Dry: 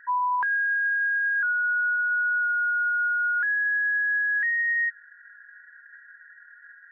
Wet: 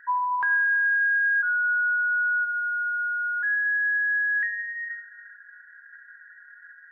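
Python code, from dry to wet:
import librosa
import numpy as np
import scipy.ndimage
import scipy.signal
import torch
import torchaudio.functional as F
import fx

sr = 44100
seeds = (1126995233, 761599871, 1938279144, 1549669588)

y = fx.lowpass(x, sr, hz=fx.line((1.41, 1400.0), (3.42, 1200.0)), slope=12, at=(1.41, 3.42), fade=0.02)
y = fx.room_shoebox(y, sr, seeds[0], volume_m3=970.0, walls='mixed', distance_m=0.65)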